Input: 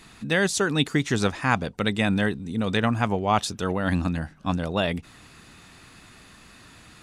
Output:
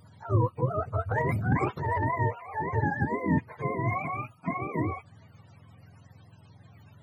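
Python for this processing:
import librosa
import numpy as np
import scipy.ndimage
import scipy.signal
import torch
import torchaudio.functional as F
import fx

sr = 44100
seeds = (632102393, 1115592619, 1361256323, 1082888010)

y = fx.octave_mirror(x, sr, pivot_hz=440.0)
y = fx.transient(y, sr, attack_db=-5, sustain_db=11, at=(1.11, 2.06))
y = F.gain(torch.from_numpy(y), -3.5).numpy()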